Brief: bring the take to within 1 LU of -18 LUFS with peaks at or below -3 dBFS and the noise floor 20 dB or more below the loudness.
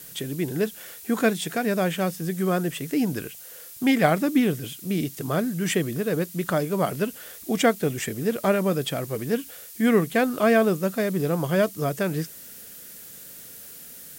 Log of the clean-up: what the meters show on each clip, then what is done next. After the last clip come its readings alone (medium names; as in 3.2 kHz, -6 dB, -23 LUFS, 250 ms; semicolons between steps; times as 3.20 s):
noise floor -43 dBFS; noise floor target -45 dBFS; loudness -24.5 LUFS; peak level -5.0 dBFS; loudness target -18.0 LUFS
-> noise reduction 6 dB, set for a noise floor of -43 dBFS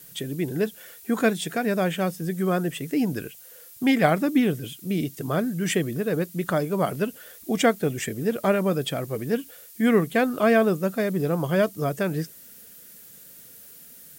noise floor -47 dBFS; loudness -25.0 LUFS; peak level -5.0 dBFS; loudness target -18.0 LUFS
-> trim +7 dB; peak limiter -3 dBFS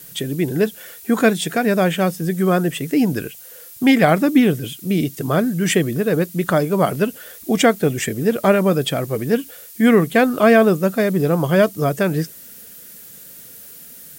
loudness -18.0 LUFS; peak level -3.0 dBFS; noise floor -40 dBFS